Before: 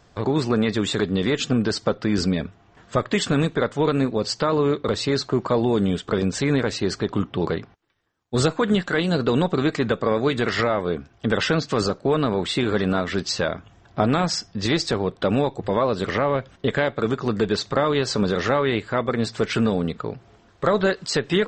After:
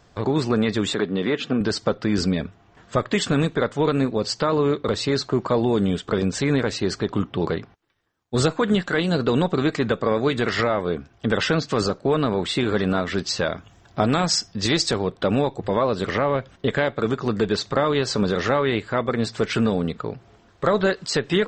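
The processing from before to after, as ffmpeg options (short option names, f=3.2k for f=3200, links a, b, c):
-filter_complex "[0:a]asettb=1/sr,asplit=3[a][b][c];[a]atrim=end=0.944[d];[b]atrim=start=0.94:end=1.61,asetpts=PTS-STARTPTS,afade=t=in:d=0.004:c=qsin,afade=t=out:st=0.666:d=0.004:c=qsin,highpass=180,lowpass=3.2k[e];[c]atrim=start=1.606[f];[d][e]acrossfade=d=0.004:c1=hsin:c2=qsin[g];[g][f]acrossfade=d=0.004:c1=qsin:c2=hsin,asettb=1/sr,asplit=3[h][i][j];[h]atrim=end=13.464[k];[i]atrim=start=13.46:end=15.07,asetpts=PTS-STARTPTS,afade=t=in:d=0.004:c=qsin,afade=t=out:st=1.606:d=0.004:c=qsin,aemphasis=mode=production:type=cd[l];[j]atrim=start=15.066[m];[k][l]acrossfade=d=0.004:c1=hsin:c2=qsin[n];[n][m]acrossfade=d=0.004:c1=qsin:c2=hsin"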